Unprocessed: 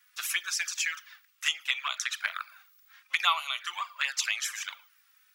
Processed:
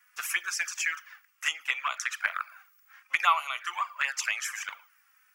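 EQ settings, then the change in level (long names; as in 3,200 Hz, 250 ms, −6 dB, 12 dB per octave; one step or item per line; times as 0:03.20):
high-pass filter 80 Hz 24 dB per octave
parametric band 3,800 Hz −14 dB 0.63 octaves
high-shelf EQ 5,100 Hz −7 dB
+5.0 dB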